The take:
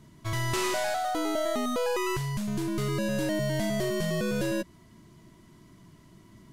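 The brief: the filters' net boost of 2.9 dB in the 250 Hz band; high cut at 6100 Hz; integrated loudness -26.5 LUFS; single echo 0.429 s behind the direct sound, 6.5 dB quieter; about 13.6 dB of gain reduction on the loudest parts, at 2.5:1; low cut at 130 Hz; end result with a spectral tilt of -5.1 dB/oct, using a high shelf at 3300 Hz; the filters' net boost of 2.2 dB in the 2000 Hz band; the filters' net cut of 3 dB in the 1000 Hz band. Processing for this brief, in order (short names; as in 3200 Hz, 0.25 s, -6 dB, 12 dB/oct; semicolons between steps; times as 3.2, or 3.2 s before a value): HPF 130 Hz; LPF 6100 Hz; bell 250 Hz +5 dB; bell 1000 Hz -5.5 dB; bell 2000 Hz +5.5 dB; high shelf 3300 Hz -5 dB; compressor 2.5:1, threshold -46 dBFS; echo 0.429 s -6.5 dB; gain +15 dB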